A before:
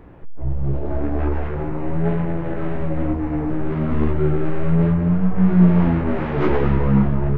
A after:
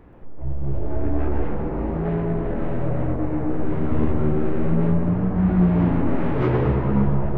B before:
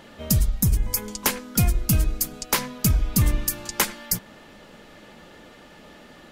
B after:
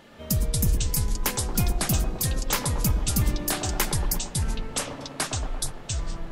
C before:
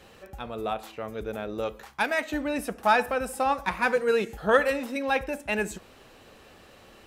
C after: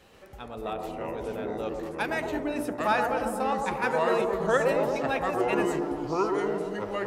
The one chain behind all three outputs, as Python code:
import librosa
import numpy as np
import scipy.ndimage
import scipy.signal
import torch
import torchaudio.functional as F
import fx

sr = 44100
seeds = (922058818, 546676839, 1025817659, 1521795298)

y = fx.echo_pitch(x, sr, ms=130, semitones=-5, count=2, db_per_echo=-3.0)
y = fx.echo_wet_bandpass(y, sr, ms=115, feedback_pct=68, hz=500.0, wet_db=-3.0)
y = F.gain(torch.from_numpy(y), -4.5).numpy()